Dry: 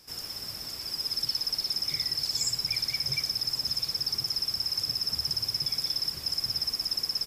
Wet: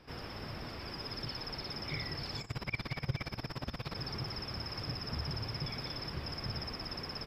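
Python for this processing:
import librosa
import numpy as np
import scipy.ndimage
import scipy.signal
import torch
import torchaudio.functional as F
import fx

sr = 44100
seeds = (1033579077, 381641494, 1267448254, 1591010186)

y = fx.over_compress(x, sr, threshold_db=-35.0, ratio=-0.5, at=(2.41, 3.94), fade=0.02)
y = fx.air_absorb(y, sr, metres=430.0)
y = y * 10.0 ** (6.5 / 20.0)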